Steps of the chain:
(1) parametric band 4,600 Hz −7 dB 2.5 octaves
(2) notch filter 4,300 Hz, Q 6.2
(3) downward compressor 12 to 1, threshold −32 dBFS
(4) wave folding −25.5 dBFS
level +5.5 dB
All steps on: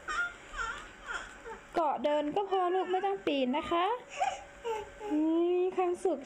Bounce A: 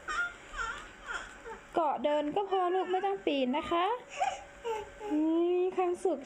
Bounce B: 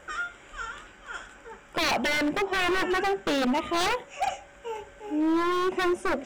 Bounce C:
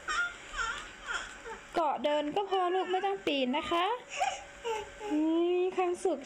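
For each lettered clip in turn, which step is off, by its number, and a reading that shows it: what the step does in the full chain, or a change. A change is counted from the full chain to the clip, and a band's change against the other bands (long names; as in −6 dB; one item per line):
4, change in crest factor +4.0 dB
3, average gain reduction 5.0 dB
1, 8 kHz band +5.0 dB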